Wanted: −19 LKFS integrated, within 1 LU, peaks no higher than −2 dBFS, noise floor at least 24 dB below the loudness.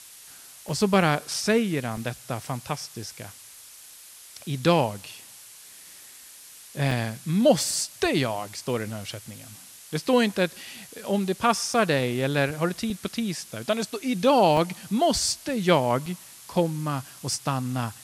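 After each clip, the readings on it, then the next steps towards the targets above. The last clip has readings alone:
number of dropouts 8; longest dropout 2.4 ms; background noise floor −47 dBFS; target noise floor −50 dBFS; integrated loudness −25.5 LKFS; sample peak −7.0 dBFS; target loudness −19.0 LKFS
→ repair the gap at 0:00.69/0:01.34/0:01.97/0:06.91/0:11.74/0:12.90/0:14.57/0:16.06, 2.4 ms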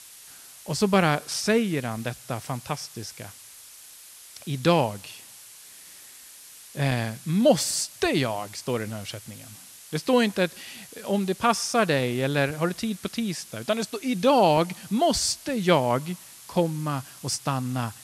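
number of dropouts 0; background noise floor −47 dBFS; target noise floor −50 dBFS
→ noise reduction from a noise print 6 dB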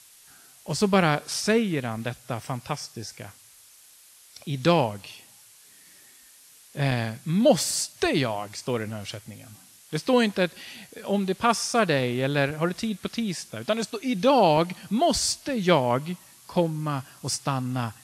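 background noise floor −53 dBFS; integrated loudness −25.0 LKFS; sample peak −6.5 dBFS; target loudness −19.0 LKFS
→ level +6 dB
brickwall limiter −2 dBFS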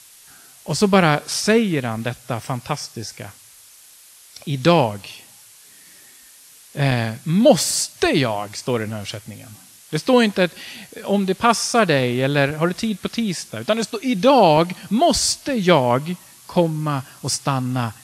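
integrated loudness −19.5 LKFS; sample peak −2.0 dBFS; background noise floor −47 dBFS

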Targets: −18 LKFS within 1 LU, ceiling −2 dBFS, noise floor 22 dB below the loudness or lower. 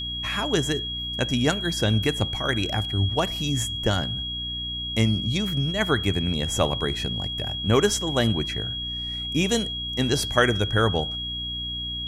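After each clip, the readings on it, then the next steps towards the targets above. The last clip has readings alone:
mains hum 60 Hz; hum harmonics up to 300 Hz; level of the hum −34 dBFS; interfering tone 3,300 Hz; level of the tone −29 dBFS; integrated loudness −24.5 LKFS; sample peak −5.0 dBFS; target loudness −18.0 LKFS
→ mains-hum notches 60/120/180/240/300 Hz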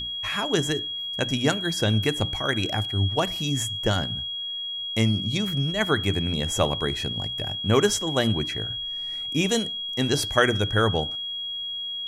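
mains hum none found; interfering tone 3,300 Hz; level of the tone −29 dBFS
→ notch filter 3,300 Hz, Q 30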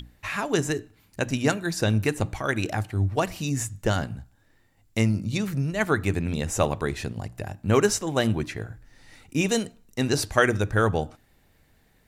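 interfering tone none found; integrated loudness −26.0 LKFS; sample peak −5.5 dBFS; target loudness −18.0 LKFS
→ level +8 dB
brickwall limiter −2 dBFS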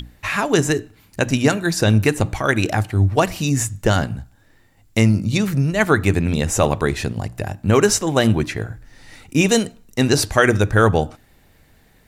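integrated loudness −18.5 LKFS; sample peak −2.0 dBFS; background noise floor −54 dBFS

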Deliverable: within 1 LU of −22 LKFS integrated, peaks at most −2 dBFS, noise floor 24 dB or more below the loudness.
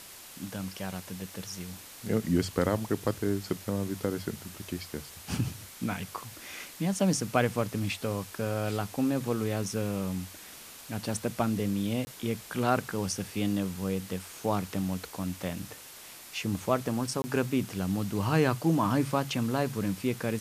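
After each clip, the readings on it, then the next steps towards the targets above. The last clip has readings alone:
number of dropouts 2; longest dropout 20 ms; background noise floor −48 dBFS; target noise floor −56 dBFS; integrated loudness −31.5 LKFS; sample peak −9.0 dBFS; target loudness −22.0 LKFS
→ repair the gap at 0:12.05/0:17.22, 20 ms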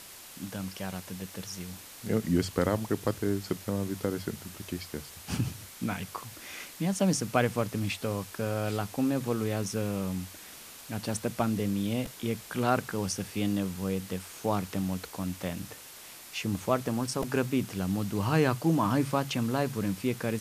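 number of dropouts 0; background noise floor −48 dBFS; target noise floor −56 dBFS
→ noise reduction from a noise print 8 dB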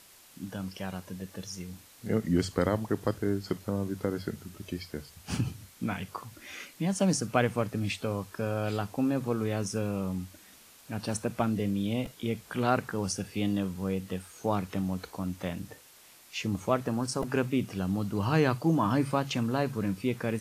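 background noise floor −56 dBFS; integrated loudness −31.5 LKFS; sample peak −9.0 dBFS; target loudness −22.0 LKFS
→ level +9.5 dB
brickwall limiter −2 dBFS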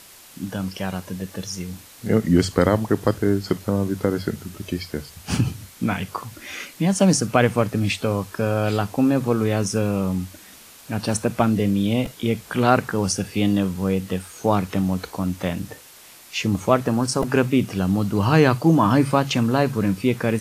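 integrated loudness −22.0 LKFS; sample peak −2.0 dBFS; background noise floor −46 dBFS

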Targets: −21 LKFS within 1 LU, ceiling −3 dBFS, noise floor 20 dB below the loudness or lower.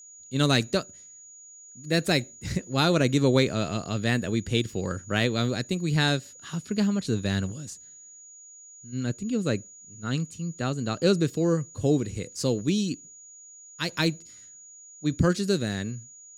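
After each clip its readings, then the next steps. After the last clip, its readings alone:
interfering tone 6,800 Hz; level of the tone −46 dBFS; integrated loudness −27.0 LKFS; sample peak −7.0 dBFS; target loudness −21.0 LKFS
→ notch filter 6,800 Hz, Q 30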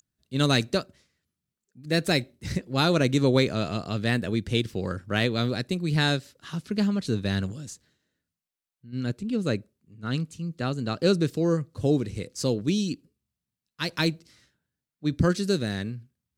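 interfering tone none found; integrated loudness −26.5 LKFS; sample peak −7.5 dBFS; target loudness −21.0 LKFS
→ level +5.5 dB
brickwall limiter −3 dBFS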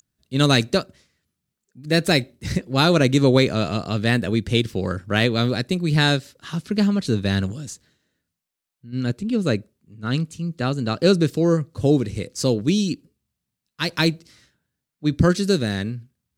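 integrated loudness −21.5 LKFS; sample peak −3.0 dBFS; background noise floor −83 dBFS

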